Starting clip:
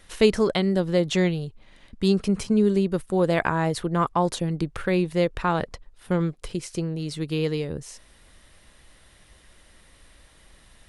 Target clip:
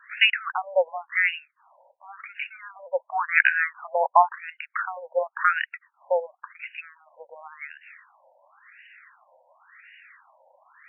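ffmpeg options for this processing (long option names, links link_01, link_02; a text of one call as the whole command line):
ffmpeg -i in.wav -af "crystalizer=i=5:c=0,afftfilt=real='re*between(b*sr/1024,680*pow(2100/680,0.5+0.5*sin(2*PI*0.93*pts/sr))/1.41,680*pow(2100/680,0.5+0.5*sin(2*PI*0.93*pts/sr))*1.41)':imag='im*between(b*sr/1024,680*pow(2100/680,0.5+0.5*sin(2*PI*0.93*pts/sr))/1.41,680*pow(2100/680,0.5+0.5*sin(2*PI*0.93*pts/sr))*1.41)':win_size=1024:overlap=0.75,volume=7dB" out.wav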